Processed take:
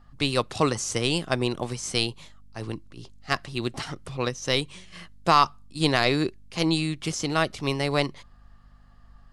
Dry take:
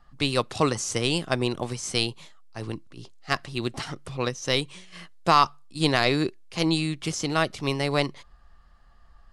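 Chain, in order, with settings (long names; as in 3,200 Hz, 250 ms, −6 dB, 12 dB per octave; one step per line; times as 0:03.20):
mains hum 50 Hz, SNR 29 dB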